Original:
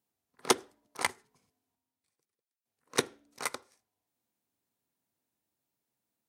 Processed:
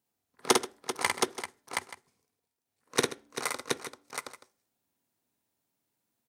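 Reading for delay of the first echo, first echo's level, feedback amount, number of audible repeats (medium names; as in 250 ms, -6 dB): 51 ms, -3.5 dB, no regular repeats, 5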